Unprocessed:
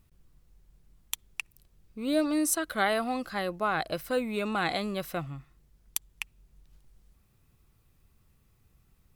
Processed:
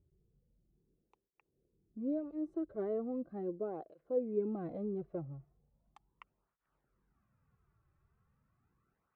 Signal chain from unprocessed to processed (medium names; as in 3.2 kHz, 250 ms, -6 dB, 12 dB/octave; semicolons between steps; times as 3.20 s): low-pass sweep 420 Hz -> 1.4 kHz, 4.97–6.67 s; cancelling through-zero flanger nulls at 0.38 Hz, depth 4.4 ms; trim -6.5 dB